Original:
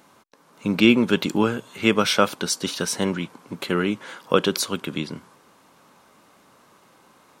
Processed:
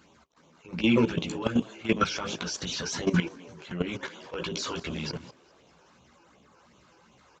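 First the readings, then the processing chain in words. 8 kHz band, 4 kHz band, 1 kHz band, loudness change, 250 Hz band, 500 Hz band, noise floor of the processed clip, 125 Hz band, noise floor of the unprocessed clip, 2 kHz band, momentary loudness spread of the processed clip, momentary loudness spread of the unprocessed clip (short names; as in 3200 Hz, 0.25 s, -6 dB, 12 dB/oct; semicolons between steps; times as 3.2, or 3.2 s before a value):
-8.5 dB, -8.0 dB, -7.5 dB, -7.0 dB, -6.5 dB, -8.5 dB, -60 dBFS, -2.5 dB, -56 dBFS, -7.5 dB, 14 LU, 14 LU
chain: phaser stages 12, 2.7 Hz, lowest notch 190–1700 Hz; transient shaper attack -12 dB, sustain +6 dB; HPF 41 Hz; low shelf 96 Hz +9 dB; notches 50/100/150/200/250/300/350/400 Hz; chorus voices 6, 1.3 Hz, delay 15 ms, depth 3 ms; downsampling 16000 Hz; frequency-shifting echo 0.203 s, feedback 47%, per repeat +98 Hz, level -19 dB; level quantiser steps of 13 dB; gain +5.5 dB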